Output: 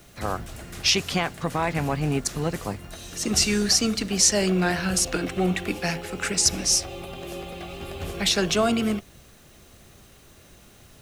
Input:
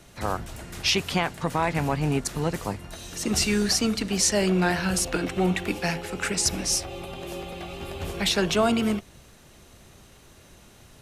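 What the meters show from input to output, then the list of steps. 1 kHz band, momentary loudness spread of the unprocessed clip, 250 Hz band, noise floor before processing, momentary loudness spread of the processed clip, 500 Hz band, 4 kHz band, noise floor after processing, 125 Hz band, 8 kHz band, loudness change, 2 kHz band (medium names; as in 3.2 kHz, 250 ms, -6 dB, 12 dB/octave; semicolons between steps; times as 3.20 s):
-1.0 dB, 14 LU, 0.0 dB, -52 dBFS, 17 LU, 0.0 dB, +3.0 dB, -52 dBFS, 0.0 dB, +4.0 dB, +2.0 dB, 0.0 dB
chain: band-stop 920 Hz, Q 11; dynamic bell 6 kHz, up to +5 dB, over -36 dBFS, Q 1.2; added noise blue -62 dBFS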